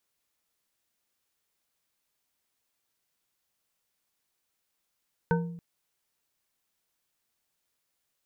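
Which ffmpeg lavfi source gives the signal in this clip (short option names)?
-f lavfi -i "aevalsrc='0.0794*pow(10,-3*t/0.85)*sin(2*PI*170*t)+0.0631*pow(10,-3*t/0.418)*sin(2*PI*468.7*t)+0.0501*pow(10,-3*t/0.261)*sin(2*PI*918.7*t)+0.0398*pow(10,-3*t/0.184)*sin(2*PI*1518.6*t)':d=0.28:s=44100"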